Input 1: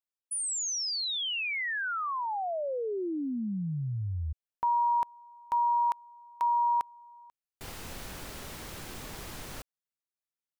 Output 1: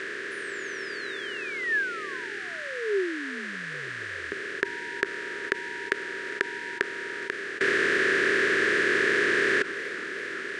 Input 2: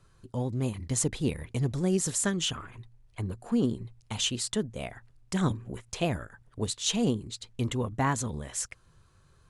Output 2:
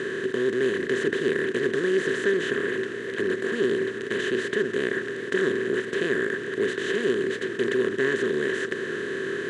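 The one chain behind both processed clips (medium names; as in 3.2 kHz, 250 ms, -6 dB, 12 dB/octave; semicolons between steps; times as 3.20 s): spectral levelling over time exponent 0.2; two resonant band-passes 820 Hz, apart 2.1 oct; modulated delay 412 ms, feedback 63%, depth 207 cents, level -18.5 dB; trim +6.5 dB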